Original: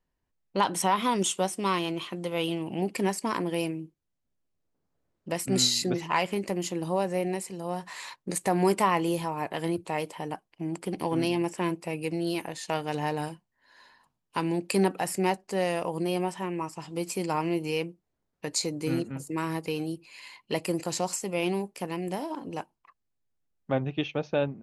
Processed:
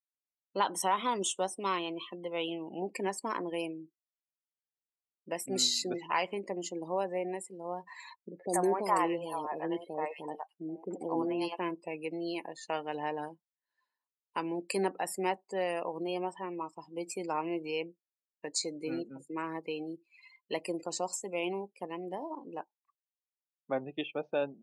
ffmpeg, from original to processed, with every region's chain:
ffmpeg -i in.wav -filter_complex "[0:a]asettb=1/sr,asplit=3[link_01][link_02][link_03];[link_01]atrim=end=8.294[link_04];[link_02]atrim=start=8.29:end=11.57,asetpts=PTS-STARTPTS,afade=type=in:duration=0.004:curve=qsin,afade=type=out:start_time=3.276:duration=0.004:curve=qsin,adynamicequalizer=threshold=0.0158:dfrequency=520:dqfactor=0.84:tfrequency=520:tqfactor=0.84:attack=5:release=100:ratio=0.375:range=2:mode=boostabove:tftype=bell,acrossover=split=570|2400[link_05][link_06][link_07];[link_06]adelay=80[link_08];[link_07]adelay=180[link_09];[link_05][link_08][link_09]amix=inputs=3:normalize=0,atrim=end_sample=144648[link_10];[link_03]atrim=start=11.566[link_11];[link_04][link_10]acrossfade=duration=0.004:curve1=hsin:curve2=qsin[link_12];[link_12][link_11]acrossfade=duration=0.004:curve1=qsin:curve2=hsin,afftdn=noise_reduction=27:noise_floor=-39,highpass=310,volume=-4dB" out.wav

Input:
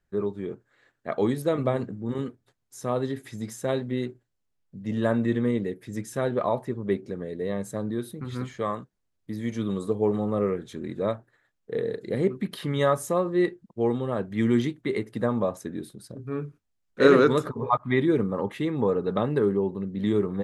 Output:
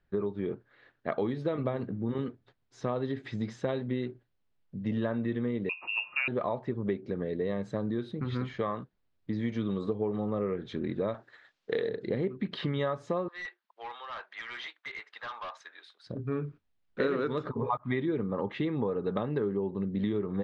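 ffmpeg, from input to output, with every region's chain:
ffmpeg -i in.wav -filter_complex "[0:a]asettb=1/sr,asplit=3[link_01][link_02][link_03];[link_01]atrim=end=5.694[link_04];[link_02]atrim=start=5.69:end=6.28,asetpts=PTS-STARTPTS,afade=type=in:duration=0.004:curve=qsin,afade=type=out:start_time=0.586:duration=0.004:curve=qsin,bandreject=frequency=143.7:width_type=h:width=4,bandreject=frequency=287.4:width_type=h:width=4,bandreject=frequency=431.1:width_type=h:width=4,bandreject=frequency=574.8:width_type=h:width=4,bandreject=frequency=718.5:width_type=h:width=4,bandreject=frequency=862.2:width_type=h:width=4,bandreject=frequency=1005.9:width_type=h:width=4,bandreject=frequency=1149.6:width_type=h:width=4,bandreject=frequency=1293.3:width_type=h:width=4,bandreject=frequency=1437:width_type=h:width=4,bandreject=frequency=1580.7:width_type=h:width=4,bandreject=frequency=1724.4:width_type=h:width=4,bandreject=frequency=1868.1:width_type=h:width=4,bandreject=frequency=2011.8:width_type=h:width=4,bandreject=frequency=2155.5:width_type=h:width=4,bandreject=frequency=2299.2:width_type=h:width=4,bandreject=frequency=2442.9:width_type=h:width=4,bandreject=frequency=2586.6:width_type=h:width=4,bandreject=frequency=2730.3:width_type=h:width=4,bandreject=frequency=2874:width_type=h:width=4,bandreject=frequency=3017.7:width_type=h:width=4,bandreject=frequency=3161.4:width_type=h:width=4,bandreject=frequency=3305.1:width_type=h:width=4,bandreject=frequency=3448.8:width_type=h:width=4,bandreject=frequency=3592.5:width_type=h:width=4,bandreject=frequency=3736.2:width_type=h:width=4,bandreject=frequency=3879.9:width_type=h:width=4,bandreject=frequency=4023.6:width_type=h:width=4,bandreject=frequency=4167.3:width_type=h:width=4,bandreject=frequency=4311:width_type=h:width=4,acompressor=mode=upward:threshold=-38dB:ratio=2.5:attack=3.2:release=140:knee=2.83:detection=peak,lowpass=frequency=2500:width_type=q:width=0.5098,lowpass=frequency=2500:width_type=q:width=0.6013,lowpass=frequency=2500:width_type=q:width=0.9,lowpass=frequency=2500:width_type=q:width=2.563,afreqshift=-2900[link_05];[link_03]atrim=start=6.276[link_06];[link_04][link_05]acrossfade=duration=0.004:curve1=hsin:curve2=qsin[link_07];[link_07][link_06]acrossfade=duration=0.004:curve1=qsin:curve2=hsin,asettb=1/sr,asplit=3[link_08][link_09][link_10];[link_08]atrim=end=11.144[link_11];[link_09]atrim=start=11.14:end=11.89,asetpts=PTS-STARTPTS,afade=type=in:duration=0.004:curve=qsin,afade=type=out:start_time=0.746:duration=0.004:curve=qsin,aemphasis=mode=production:type=riaa,acontrast=51[link_12];[link_10]atrim=start=11.886[link_13];[link_11][link_12]acrossfade=duration=0.004:curve1=hsin:curve2=qsin[link_14];[link_14][link_13]acrossfade=duration=0.004:curve1=qsin:curve2=hsin,asettb=1/sr,asplit=3[link_15][link_16][link_17];[link_15]atrim=end=13.284[link_18];[link_16]atrim=start=13.28:end=16.07,asetpts=PTS-STARTPTS,afade=type=in:duration=0.004:curve=qsin,afade=type=out:start_time=2.786:duration=0.004:curve=qsin,highpass=frequency=940:width=0.5412,highpass=frequency=940:width=1.3066,asoftclip=type=hard:threshold=-38.5dB[link_19];[link_17]atrim=start=16.066[link_20];[link_18][link_19]acrossfade=duration=0.004:curve1=hsin:curve2=qsin[link_21];[link_21][link_20]acrossfade=duration=0.004:curve1=qsin:curve2=hsin,lowpass=frequency=4300:width=0.5412,lowpass=frequency=4300:width=1.3066,acompressor=threshold=-30dB:ratio=6,volume=2.5dB" out.wav

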